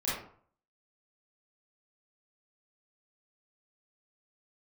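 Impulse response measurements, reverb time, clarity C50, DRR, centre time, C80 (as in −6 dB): 0.55 s, 0.0 dB, −10.0 dB, 57 ms, 6.0 dB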